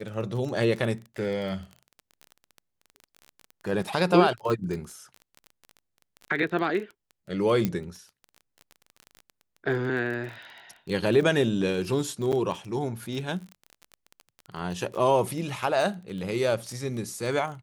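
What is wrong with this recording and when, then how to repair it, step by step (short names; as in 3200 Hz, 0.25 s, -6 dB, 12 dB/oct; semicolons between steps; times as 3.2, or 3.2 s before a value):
crackle 21/s -33 dBFS
4.5 pop -18 dBFS
7.65 pop -12 dBFS
12.32–12.33 gap 7.7 ms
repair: de-click; interpolate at 12.32, 7.7 ms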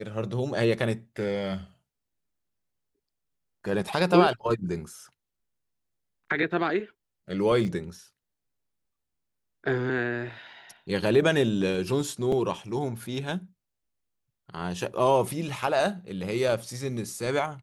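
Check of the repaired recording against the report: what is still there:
7.65 pop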